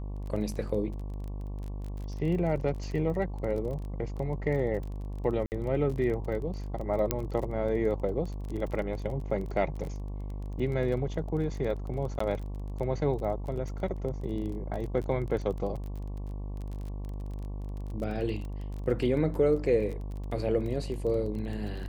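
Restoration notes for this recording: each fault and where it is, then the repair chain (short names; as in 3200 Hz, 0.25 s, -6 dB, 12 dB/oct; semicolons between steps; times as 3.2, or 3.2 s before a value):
buzz 50 Hz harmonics 23 -36 dBFS
crackle 23/s -36 dBFS
5.46–5.52 gap 59 ms
7.11 pop -10 dBFS
12.19–12.2 gap 14 ms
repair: de-click; de-hum 50 Hz, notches 23; interpolate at 5.46, 59 ms; interpolate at 12.19, 14 ms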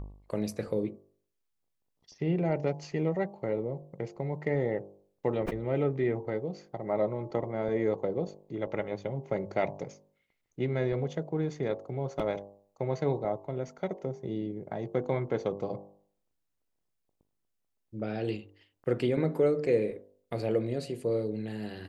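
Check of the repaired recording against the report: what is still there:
none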